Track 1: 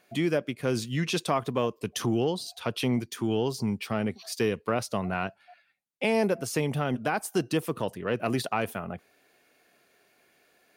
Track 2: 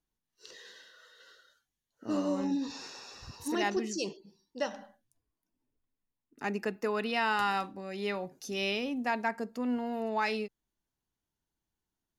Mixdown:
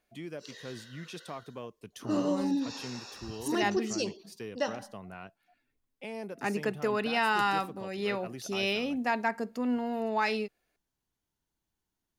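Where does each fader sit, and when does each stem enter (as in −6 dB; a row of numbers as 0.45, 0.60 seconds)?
−15.0, +2.0 decibels; 0.00, 0.00 seconds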